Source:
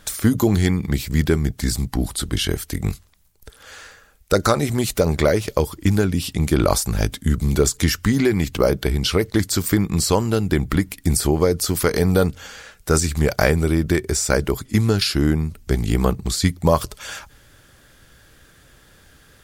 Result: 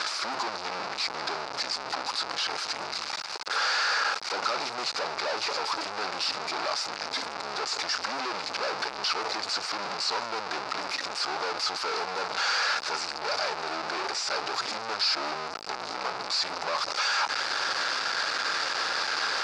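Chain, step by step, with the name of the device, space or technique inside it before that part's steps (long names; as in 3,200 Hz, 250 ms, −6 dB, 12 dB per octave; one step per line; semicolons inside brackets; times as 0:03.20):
home computer beeper (sign of each sample alone; loudspeaker in its box 740–5,000 Hz, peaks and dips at 850 Hz +4 dB, 1,300 Hz +4 dB, 1,900 Hz −4 dB, 3,200 Hz −8 dB, 4,800 Hz +7 dB)
level −4 dB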